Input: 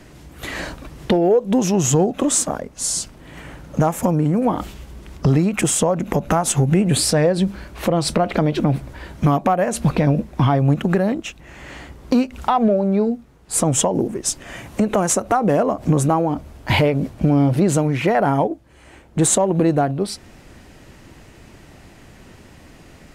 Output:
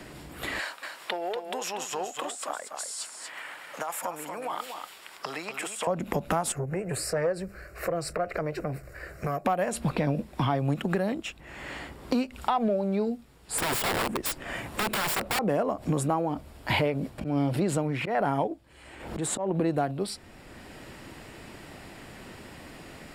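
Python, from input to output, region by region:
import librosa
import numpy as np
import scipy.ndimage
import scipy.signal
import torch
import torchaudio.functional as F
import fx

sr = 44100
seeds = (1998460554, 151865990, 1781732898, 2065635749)

y = fx.chain(x, sr, fx.highpass(hz=1000.0, slope=12),
    fx.over_compress(threshold_db=-27.0, ratio=-1.0),
    fx.echo_single(ms=238, db=-8.0), at=(0.59, 5.87))
y = fx.chain(y, sr, fx.peak_eq(hz=9900.0, db=-5.5, octaves=0.38),
    fx.fixed_phaser(hz=910.0, stages=6),
    fx.transformer_sat(knee_hz=370.0), at=(6.52, 9.45))
y = fx.chain(y, sr, fx.low_shelf(hz=61.0, db=4.5),
    fx.leveller(passes=1),
    fx.overflow_wrap(gain_db=14.5), at=(13.58, 15.39))
y = fx.chain(y, sr, fx.high_shelf(hz=4800.0, db=-5.0),
    fx.auto_swell(attack_ms=136.0),
    fx.pre_swell(db_per_s=95.0), at=(17.18, 19.74))
y = fx.low_shelf(y, sr, hz=320.0, db=-5.0)
y = fx.notch(y, sr, hz=6200.0, q=5.4)
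y = fx.band_squash(y, sr, depth_pct=40)
y = y * librosa.db_to_amplitude(-6.5)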